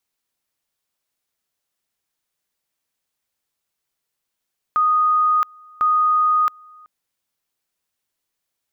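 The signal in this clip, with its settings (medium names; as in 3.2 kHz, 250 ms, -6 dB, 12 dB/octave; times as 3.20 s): two-level tone 1.24 kHz -13.5 dBFS, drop 28.5 dB, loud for 0.67 s, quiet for 0.38 s, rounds 2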